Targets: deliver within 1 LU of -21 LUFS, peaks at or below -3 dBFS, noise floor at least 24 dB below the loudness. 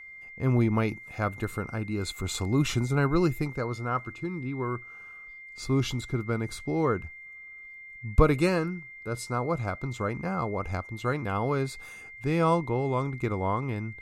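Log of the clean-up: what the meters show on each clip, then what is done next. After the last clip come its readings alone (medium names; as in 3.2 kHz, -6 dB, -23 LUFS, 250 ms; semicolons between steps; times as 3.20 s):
steady tone 2.1 kHz; tone level -43 dBFS; loudness -29.0 LUFS; peak level -7.5 dBFS; loudness target -21.0 LUFS
-> band-stop 2.1 kHz, Q 30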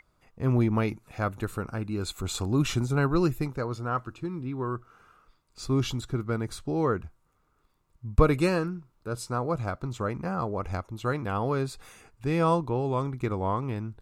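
steady tone not found; loudness -29.0 LUFS; peak level -7.5 dBFS; loudness target -21.0 LUFS
-> trim +8 dB; peak limiter -3 dBFS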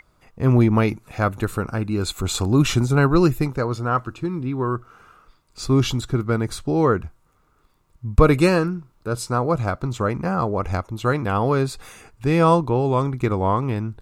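loudness -21.5 LUFS; peak level -3.0 dBFS; noise floor -62 dBFS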